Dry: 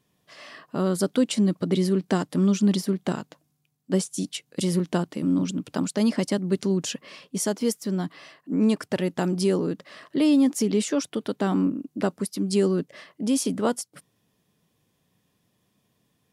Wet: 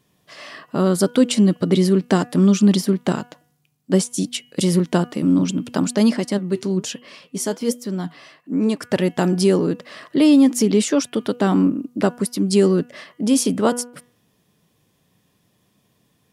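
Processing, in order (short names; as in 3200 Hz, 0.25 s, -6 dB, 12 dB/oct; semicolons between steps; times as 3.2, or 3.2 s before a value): de-hum 243 Hz, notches 13; 6.17–8.82 flange 1.2 Hz, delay 2.1 ms, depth 6.1 ms, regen +76%; gain +6.5 dB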